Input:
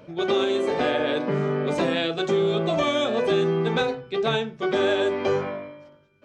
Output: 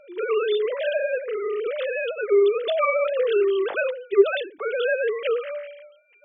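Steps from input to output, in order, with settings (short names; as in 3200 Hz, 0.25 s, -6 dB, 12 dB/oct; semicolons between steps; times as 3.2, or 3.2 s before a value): sine-wave speech; high shelf 2400 Hz +9.5 dB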